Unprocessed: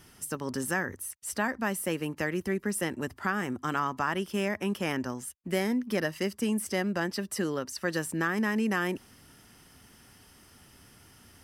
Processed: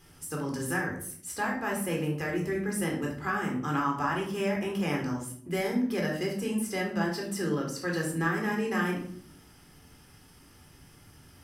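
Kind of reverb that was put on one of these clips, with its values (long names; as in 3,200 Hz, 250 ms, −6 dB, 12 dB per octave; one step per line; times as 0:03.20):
rectangular room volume 790 cubic metres, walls furnished, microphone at 3.9 metres
level −5.5 dB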